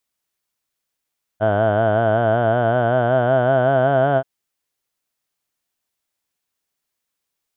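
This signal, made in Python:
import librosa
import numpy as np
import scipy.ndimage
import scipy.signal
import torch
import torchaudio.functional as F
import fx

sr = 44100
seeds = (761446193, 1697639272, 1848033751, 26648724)

y = fx.formant_vowel(sr, seeds[0], length_s=2.83, hz=104.0, glide_st=5.0, vibrato_hz=5.3, vibrato_st=0.9, f1_hz=660.0, f2_hz=1500.0, f3_hz=3100.0)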